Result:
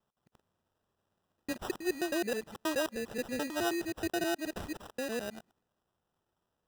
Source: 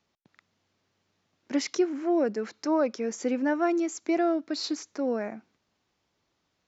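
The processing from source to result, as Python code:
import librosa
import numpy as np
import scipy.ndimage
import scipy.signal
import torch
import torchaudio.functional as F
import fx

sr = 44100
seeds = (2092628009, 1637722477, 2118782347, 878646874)

y = fx.local_reverse(x, sr, ms=106.0)
y = fx.sample_hold(y, sr, seeds[0], rate_hz=2200.0, jitter_pct=0)
y = fx.peak_eq(y, sr, hz=280.0, db=-6.0, octaves=0.32)
y = y * 10.0 ** (-6.0 / 20.0)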